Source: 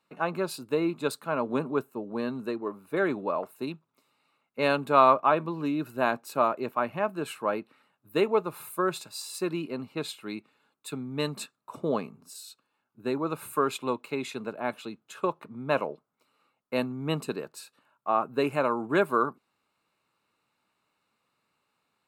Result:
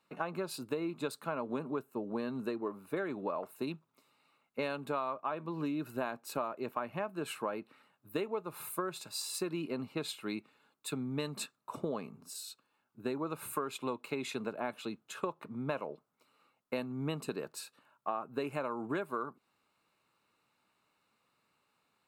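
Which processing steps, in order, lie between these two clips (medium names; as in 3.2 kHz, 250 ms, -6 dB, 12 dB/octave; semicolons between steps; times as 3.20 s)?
compression 10:1, threshold -32 dBFS, peak gain reduction 18.5 dB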